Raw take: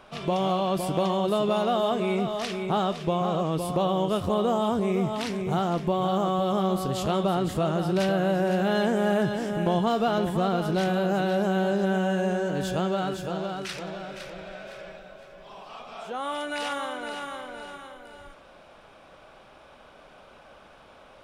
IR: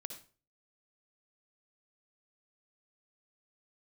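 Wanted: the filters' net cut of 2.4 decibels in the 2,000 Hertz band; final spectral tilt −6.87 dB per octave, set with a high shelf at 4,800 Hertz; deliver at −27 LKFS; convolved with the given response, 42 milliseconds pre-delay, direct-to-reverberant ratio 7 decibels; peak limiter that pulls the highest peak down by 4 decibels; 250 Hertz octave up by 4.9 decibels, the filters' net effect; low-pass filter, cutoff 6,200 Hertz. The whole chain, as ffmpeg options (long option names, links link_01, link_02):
-filter_complex "[0:a]lowpass=6200,equalizer=frequency=250:width_type=o:gain=7.5,equalizer=frequency=2000:width_type=o:gain=-3,highshelf=frequency=4800:gain=-4,alimiter=limit=-14dB:level=0:latency=1,asplit=2[link_01][link_02];[1:a]atrim=start_sample=2205,adelay=42[link_03];[link_02][link_03]afir=irnorm=-1:irlink=0,volume=-3.5dB[link_04];[link_01][link_04]amix=inputs=2:normalize=0,volume=-4dB"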